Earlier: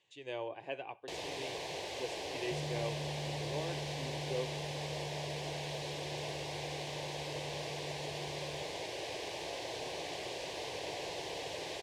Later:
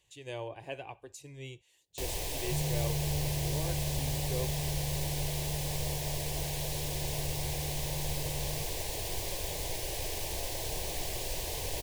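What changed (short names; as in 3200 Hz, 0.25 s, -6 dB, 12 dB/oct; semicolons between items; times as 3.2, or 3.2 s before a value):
first sound: entry +0.90 s; master: remove BPF 220–4100 Hz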